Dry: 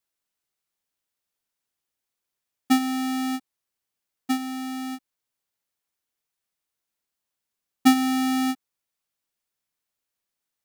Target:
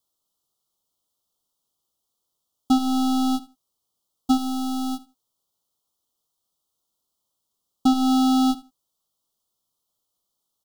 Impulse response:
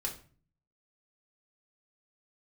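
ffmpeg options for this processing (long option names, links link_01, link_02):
-filter_complex "[0:a]acrossover=split=5800[link_01][link_02];[link_02]acompressor=threshold=-40dB:ratio=4:attack=1:release=60[link_03];[link_01][link_03]amix=inputs=2:normalize=0,alimiter=limit=-18.5dB:level=0:latency=1:release=253,aeval=exprs='0.119*(cos(1*acos(clip(val(0)/0.119,-1,1)))-cos(1*PI/2))+0.00668*(cos(8*acos(clip(val(0)/0.119,-1,1)))-cos(8*PI/2))':channel_layout=same,asuperstop=centerf=2000:order=12:qfactor=1.2,asplit=2[link_04][link_05];[link_05]aecho=0:1:79|158:0.112|0.0191[link_06];[link_04][link_06]amix=inputs=2:normalize=0,volume=6dB"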